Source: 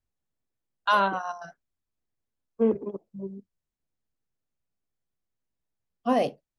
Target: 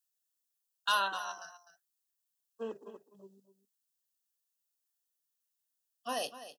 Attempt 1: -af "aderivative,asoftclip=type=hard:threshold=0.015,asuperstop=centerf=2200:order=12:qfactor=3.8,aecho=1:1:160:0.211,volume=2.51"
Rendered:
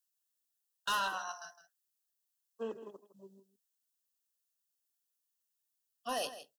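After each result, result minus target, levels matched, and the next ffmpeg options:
hard clipper: distortion +16 dB; echo 92 ms early
-af "aderivative,asoftclip=type=hard:threshold=0.0447,asuperstop=centerf=2200:order=12:qfactor=3.8,aecho=1:1:160:0.211,volume=2.51"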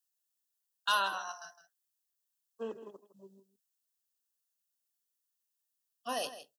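echo 92 ms early
-af "aderivative,asoftclip=type=hard:threshold=0.0447,asuperstop=centerf=2200:order=12:qfactor=3.8,aecho=1:1:252:0.211,volume=2.51"

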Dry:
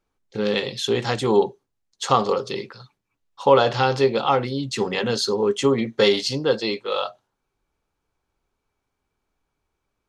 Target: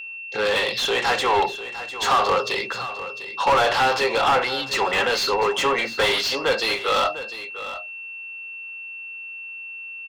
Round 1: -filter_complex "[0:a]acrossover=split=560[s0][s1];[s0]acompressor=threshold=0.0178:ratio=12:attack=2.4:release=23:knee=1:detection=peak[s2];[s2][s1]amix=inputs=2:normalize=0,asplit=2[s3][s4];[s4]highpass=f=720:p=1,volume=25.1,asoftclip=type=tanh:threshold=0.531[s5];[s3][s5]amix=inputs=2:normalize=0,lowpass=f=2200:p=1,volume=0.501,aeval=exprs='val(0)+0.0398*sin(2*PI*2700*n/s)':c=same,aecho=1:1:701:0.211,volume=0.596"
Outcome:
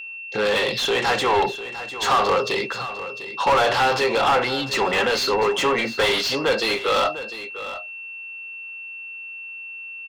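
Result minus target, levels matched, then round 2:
compression: peak gain reduction -10 dB
-filter_complex "[0:a]acrossover=split=560[s0][s1];[s0]acompressor=threshold=0.00501:ratio=12:attack=2.4:release=23:knee=1:detection=peak[s2];[s2][s1]amix=inputs=2:normalize=0,asplit=2[s3][s4];[s4]highpass=f=720:p=1,volume=25.1,asoftclip=type=tanh:threshold=0.531[s5];[s3][s5]amix=inputs=2:normalize=0,lowpass=f=2200:p=1,volume=0.501,aeval=exprs='val(0)+0.0398*sin(2*PI*2700*n/s)':c=same,aecho=1:1:701:0.211,volume=0.596"

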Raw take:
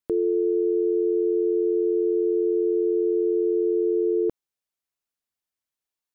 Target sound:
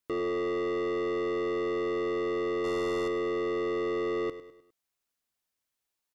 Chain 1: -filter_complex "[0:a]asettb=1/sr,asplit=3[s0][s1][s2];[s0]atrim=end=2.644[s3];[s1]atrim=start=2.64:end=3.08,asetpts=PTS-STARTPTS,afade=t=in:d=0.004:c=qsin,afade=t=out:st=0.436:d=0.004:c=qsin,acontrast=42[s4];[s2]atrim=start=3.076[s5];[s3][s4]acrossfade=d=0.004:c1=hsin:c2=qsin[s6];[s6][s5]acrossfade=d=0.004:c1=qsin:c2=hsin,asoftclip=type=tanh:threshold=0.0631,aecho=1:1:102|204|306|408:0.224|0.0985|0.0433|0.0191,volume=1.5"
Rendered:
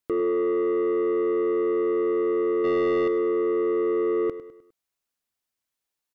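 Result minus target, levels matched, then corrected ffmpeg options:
saturation: distortion -4 dB
-filter_complex "[0:a]asettb=1/sr,asplit=3[s0][s1][s2];[s0]atrim=end=2.644[s3];[s1]atrim=start=2.64:end=3.08,asetpts=PTS-STARTPTS,afade=t=in:d=0.004:c=qsin,afade=t=out:st=0.436:d=0.004:c=qsin,acontrast=42[s4];[s2]atrim=start=3.076[s5];[s3][s4]acrossfade=d=0.004:c1=hsin:c2=qsin[s6];[s6][s5]acrossfade=d=0.004:c1=qsin:c2=hsin,asoftclip=type=tanh:threshold=0.0237,aecho=1:1:102|204|306|408:0.224|0.0985|0.0433|0.0191,volume=1.5"

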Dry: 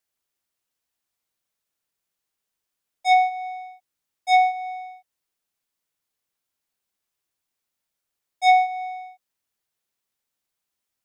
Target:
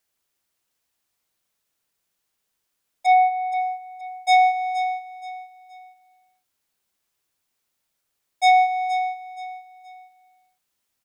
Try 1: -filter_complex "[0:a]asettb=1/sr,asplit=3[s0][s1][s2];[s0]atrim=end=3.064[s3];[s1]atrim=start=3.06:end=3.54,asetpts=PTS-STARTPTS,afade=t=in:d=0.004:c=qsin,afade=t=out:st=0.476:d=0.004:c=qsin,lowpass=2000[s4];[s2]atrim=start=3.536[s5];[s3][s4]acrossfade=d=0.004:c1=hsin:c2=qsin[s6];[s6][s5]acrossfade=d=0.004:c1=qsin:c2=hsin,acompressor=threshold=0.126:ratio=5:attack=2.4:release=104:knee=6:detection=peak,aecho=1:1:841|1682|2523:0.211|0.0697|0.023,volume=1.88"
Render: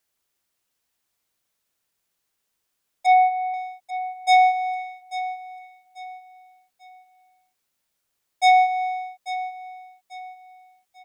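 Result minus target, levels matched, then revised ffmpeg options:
echo 368 ms late
-filter_complex "[0:a]asettb=1/sr,asplit=3[s0][s1][s2];[s0]atrim=end=3.064[s3];[s1]atrim=start=3.06:end=3.54,asetpts=PTS-STARTPTS,afade=t=in:d=0.004:c=qsin,afade=t=out:st=0.476:d=0.004:c=qsin,lowpass=2000[s4];[s2]atrim=start=3.536[s5];[s3][s4]acrossfade=d=0.004:c1=hsin:c2=qsin[s6];[s6][s5]acrossfade=d=0.004:c1=qsin:c2=hsin,acompressor=threshold=0.126:ratio=5:attack=2.4:release=104:knee=6:detection=peak,aecho=1:1:473|946|1419:0.211|0.0697|0.023,volume=1.88"

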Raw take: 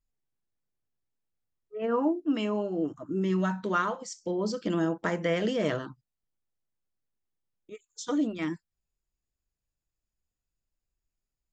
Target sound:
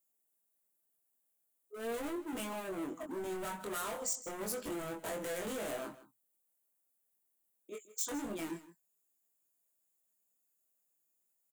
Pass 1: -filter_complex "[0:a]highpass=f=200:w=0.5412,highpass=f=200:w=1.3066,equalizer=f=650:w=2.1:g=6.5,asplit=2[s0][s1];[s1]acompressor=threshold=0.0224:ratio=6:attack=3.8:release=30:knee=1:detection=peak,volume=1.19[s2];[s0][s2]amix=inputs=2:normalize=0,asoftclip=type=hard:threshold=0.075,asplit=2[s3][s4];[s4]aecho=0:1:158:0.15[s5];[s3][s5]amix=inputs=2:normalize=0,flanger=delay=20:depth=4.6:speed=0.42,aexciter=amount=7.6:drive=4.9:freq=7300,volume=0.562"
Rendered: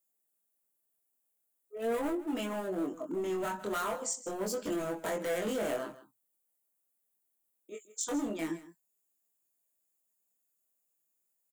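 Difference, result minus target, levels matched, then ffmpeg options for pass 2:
hard clipper: distortion -5 dB
-filter_complex "[0:a]highpass=f=200:w=0.5412,highpass=f=200:w=1.3066,equalizer=f=650:w=2.1:g=6.5,asplit=2[s0][s1];[s1]acompressor=threshold=0.0224:ratio=6:attack=3.8:release=30:knee=1:detection=peak,volume=1.19[s2];[s0][s2]amix=inputs=2:normalize=0,asoftclip=type=hard:threshold=0.0299,asplit=2[s3][s4];[s4]aecho=0:1:158:0.15[s5];[s3][s5]amix=inputs=2:normalize=0,flanger=delay=20:depth=4.6:speed=0.42,aexciter=amount=7.6:drive=4.9:freq=7300,volume=0.562"

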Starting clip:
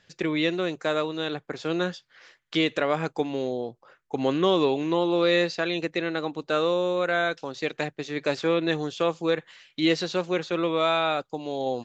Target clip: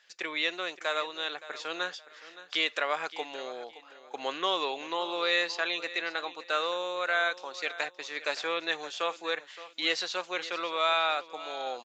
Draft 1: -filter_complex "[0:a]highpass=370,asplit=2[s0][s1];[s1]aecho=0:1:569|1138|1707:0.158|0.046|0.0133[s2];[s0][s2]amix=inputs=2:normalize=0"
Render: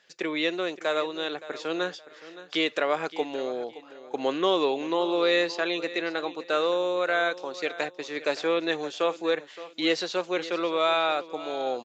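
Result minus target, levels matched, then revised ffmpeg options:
500 Hz band +5.0 dB
-filter_complex "[0:a]highpass=870,asplit=2[s0][s1];[s1]aecho=0:1:569|1138|1707:0.158|0.046|0.0133[s2];[s0][s2]amix=inputs=2:normalize=0"

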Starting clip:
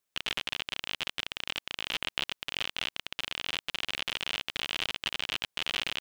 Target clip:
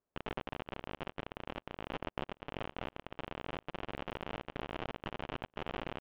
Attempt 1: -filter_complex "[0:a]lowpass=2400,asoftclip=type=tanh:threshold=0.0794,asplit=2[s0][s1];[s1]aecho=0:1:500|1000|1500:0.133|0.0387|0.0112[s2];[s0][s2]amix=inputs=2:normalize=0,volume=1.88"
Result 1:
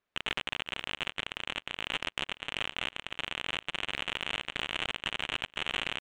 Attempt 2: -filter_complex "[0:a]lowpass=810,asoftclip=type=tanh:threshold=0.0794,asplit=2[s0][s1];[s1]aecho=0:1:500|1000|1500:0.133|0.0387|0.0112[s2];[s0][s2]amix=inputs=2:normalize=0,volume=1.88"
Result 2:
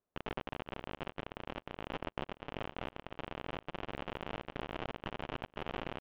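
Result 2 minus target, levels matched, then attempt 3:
echo-to-direct +7.5 dB
-filter_complex "[0:a]lowpass=810,asoftclip=type=tanh:threshold=0.0794,asplit=2[s0][s1];[s1]aecho=0:1:500|1000:0.0562|0.0163[s2];[s0][s2]amix=inputs=2:normalize=0,volume=1.88"

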